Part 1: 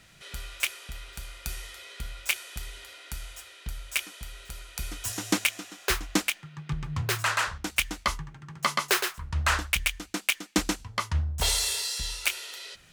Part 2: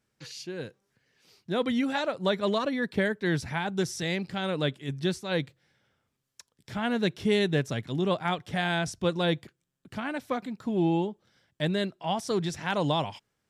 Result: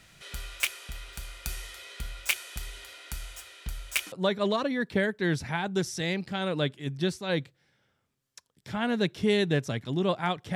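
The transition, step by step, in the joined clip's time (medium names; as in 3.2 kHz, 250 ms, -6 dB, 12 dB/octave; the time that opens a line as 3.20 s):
part 1
4.12 s: go over to part 2 from 2.14 s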